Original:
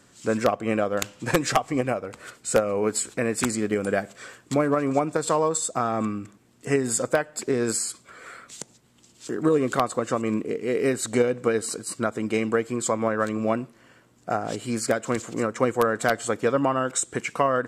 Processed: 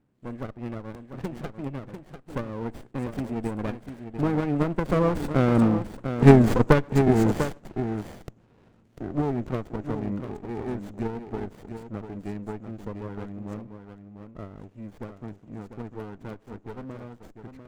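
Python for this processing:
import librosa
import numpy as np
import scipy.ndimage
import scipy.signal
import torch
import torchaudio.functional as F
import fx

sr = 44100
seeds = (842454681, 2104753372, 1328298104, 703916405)

p1 = fx.wiener(x, sr, points=9)
p2 = fx.doppler_pass(p1, sr, speed_mps=25, closest_m=13.0, pass_at_s=6.18)
p3 = fx.low_shelf(p2, sr, hz=440.0, db=9.5)
p4 = p3 + fx.echo_single(p3, sr, ms=696, db=-8.5, dry=0)
p5 = fx.running_max(p4, sr, window=33)
y = p5 * 10.0 ** (4.5 / 20.0)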